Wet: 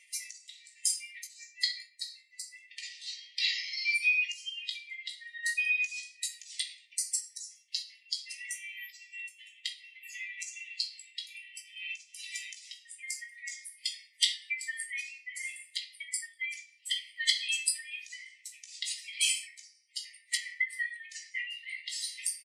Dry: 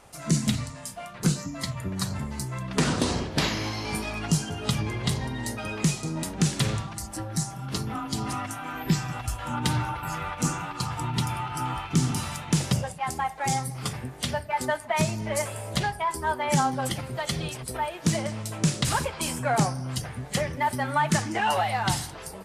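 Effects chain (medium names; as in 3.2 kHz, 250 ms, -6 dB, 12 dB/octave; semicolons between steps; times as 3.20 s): spectral contrast enhancement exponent 2; dynamic bell 4.6 kHz, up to +6 dB, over -55 dBFS, Q 1.7; reverberation RT60 0.55 s, pre-delay 3 ms, DRR 0.5 dB; compression, threshold -28 dBFS, peak gain reduction 11.5 dB; brick-wall FIR high-pass 1.8 kHz; doubling 17 ms -7.5 dB; trim +8.5 dB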